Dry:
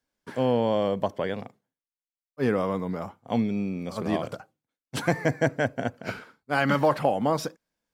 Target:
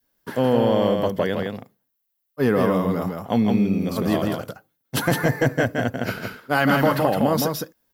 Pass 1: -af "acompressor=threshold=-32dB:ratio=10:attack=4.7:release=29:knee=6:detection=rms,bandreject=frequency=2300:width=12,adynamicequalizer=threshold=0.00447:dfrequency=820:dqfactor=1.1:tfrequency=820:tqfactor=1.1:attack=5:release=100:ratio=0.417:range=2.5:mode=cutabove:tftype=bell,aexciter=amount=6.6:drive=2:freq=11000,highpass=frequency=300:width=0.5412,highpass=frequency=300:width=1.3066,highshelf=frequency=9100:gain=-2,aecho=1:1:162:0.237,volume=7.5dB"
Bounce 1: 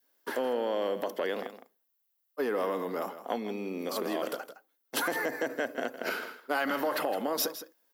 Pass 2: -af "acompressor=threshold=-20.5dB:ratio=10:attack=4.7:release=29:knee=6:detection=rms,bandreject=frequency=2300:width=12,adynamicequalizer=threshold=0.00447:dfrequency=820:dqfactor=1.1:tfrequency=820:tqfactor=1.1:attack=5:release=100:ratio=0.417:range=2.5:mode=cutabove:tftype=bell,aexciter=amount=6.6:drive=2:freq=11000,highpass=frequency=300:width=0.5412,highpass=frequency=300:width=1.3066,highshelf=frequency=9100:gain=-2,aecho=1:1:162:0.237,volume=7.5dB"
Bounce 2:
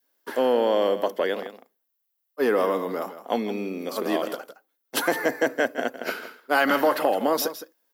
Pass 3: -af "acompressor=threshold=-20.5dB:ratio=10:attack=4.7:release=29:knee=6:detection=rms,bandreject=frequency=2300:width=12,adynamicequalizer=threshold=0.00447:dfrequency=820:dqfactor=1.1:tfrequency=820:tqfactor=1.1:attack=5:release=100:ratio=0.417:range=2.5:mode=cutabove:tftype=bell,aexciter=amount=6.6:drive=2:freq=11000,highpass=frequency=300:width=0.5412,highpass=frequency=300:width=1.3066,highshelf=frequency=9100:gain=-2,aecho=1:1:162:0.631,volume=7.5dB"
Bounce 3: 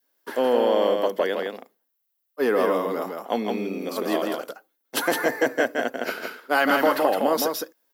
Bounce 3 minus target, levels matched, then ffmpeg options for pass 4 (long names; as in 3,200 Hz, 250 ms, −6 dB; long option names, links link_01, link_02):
250 Hz band −5.0 dB
-af "acompressor=threshold=-20.5dB:ratio=10:attack=4.7:release=29:knee=6:detection=rms,bandreject=frequency=2300:width=12,adynamicequalizer=threshold=0.00447:dfrequency=820:dqfactor=1.1:tfrequency=820:tqfactor=1.1:attack=5:release=100:ratio=0.417:range=2.5:mode=cutabove:tftype=bell,aexciter=amount=6.6:drive=2:freq=11000,highshelf=frequency=9100:gain=-2,aecho=1:1:162:0.631,volume=7.5dB"